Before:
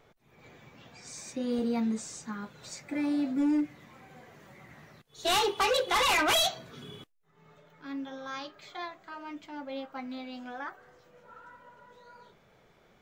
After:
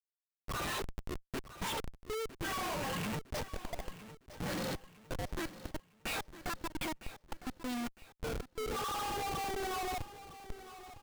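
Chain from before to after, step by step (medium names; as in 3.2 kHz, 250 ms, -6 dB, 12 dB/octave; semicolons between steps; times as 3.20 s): gliding tape speed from 171% -> 65%; spectral noise reduction 30 dB; level-controlled noise filter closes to 2.2 kHz, open at -24.5 dBFS; treble shelf 11 kHz +7 dB; in parallel at +1.5 dB: peak limiter -25.5 dBFS, peak gain reduction 7.5 dB; on the sum: low-pass that closes with the level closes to 740 Hz, closed at -19 dBFS; inverted gate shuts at -27 dBFS, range -35 dB; Schmitt trigger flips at -54 dBFS; on a send: feedback delay 957 ms, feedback 39%, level -14.5 dB; on the sum: trim +11.5 dB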